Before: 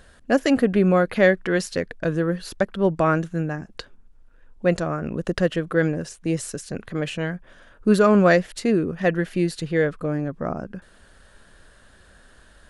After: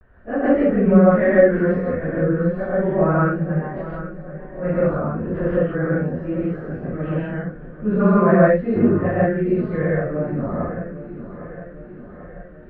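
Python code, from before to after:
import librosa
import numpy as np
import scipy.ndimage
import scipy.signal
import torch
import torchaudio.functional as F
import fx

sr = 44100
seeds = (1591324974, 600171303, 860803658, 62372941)

p1 = fx.phase_scramble(x, sr, seeds[0], window_ms=100)
p2 = scipy.signal.sosfilt(scipy.signal.butter(4, 1800.0, 'lowpass', fs=sr, output='sos'), p1)
p3 = fx.low_shelf(p2, sr, hz=120.0, db=6.5)
p4 = fx.rev_gated(p3, sr, seeds[1], gate_ms=190, shape='rising', drr_db=-5.0)
p5 = fx.dmg_buzz(p4, sr, base_hz=100.0, harmonics=21, level_db=-24.0, tilt_db=-8, odd_only=False, at=(8.74, 9.24), fade=0.02)
p6 = p5 + fx.echo_feedback(p5, sr, ms=792, feedback_pct=59, wet_db=-14.0, dry=0)
p7 = fx.vibrato(p6, sr, rate_hz=0.34, depth_cents=37.0)
y = p7 * librosa.db_to_amplitude(-5.0)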